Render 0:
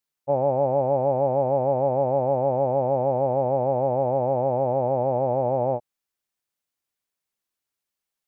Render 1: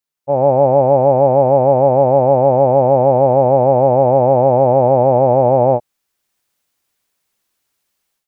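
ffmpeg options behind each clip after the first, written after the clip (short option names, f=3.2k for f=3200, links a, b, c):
-af "dynaudnorm=f=220:g=3:m=14.5dB"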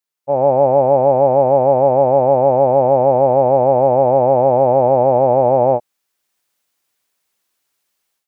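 -af "lowshelf=f=190:g=-8"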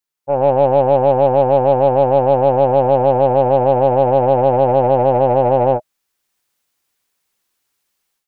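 -af "lowshelf=f=110:g=6.5,bandreject=f=630:w=12,aeval=exprs='0.794*(cos(1*acos(clip(val(0)/0.794,-1,1)))-cos(1*PI/2))+0.0224*(cos(6*acos(clip(val(0)/0.794,-1,1)))-cos(6*PI/2))':c=same"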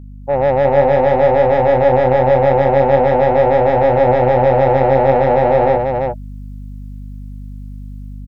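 -filter_complex "[0:a]aeval=exprs='val(0)+0.0178*(sin(2*PI*50*n/s)+sin(2*PI*2*50*n/s)/2+sin(2*PI*3*50*n/s)/3+sin(2*PI*4*50*n/s)/4+sin(2*PI*5*50*n/s)/5)':c=same,asoftclip=type=tanh:threshold=-10dB,asplit=2[a][b];[b]aecho=0:1:340:0.631[c];[a][c]amix=inputs=2:normalize=0,volume=2.5dB"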